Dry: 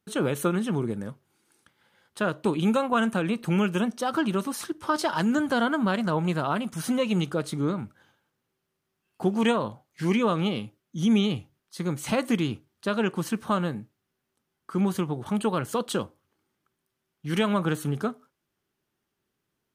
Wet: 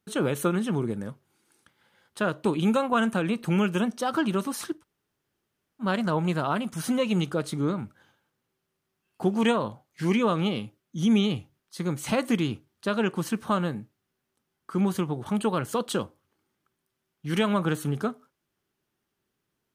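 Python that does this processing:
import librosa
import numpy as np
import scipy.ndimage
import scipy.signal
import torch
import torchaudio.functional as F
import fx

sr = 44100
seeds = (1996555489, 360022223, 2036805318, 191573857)

y = fx.edit(x, sr, fx.room_tone_fill(start_s=4.79, length_s=1.05, crossfade_s=0.1), tone=tone)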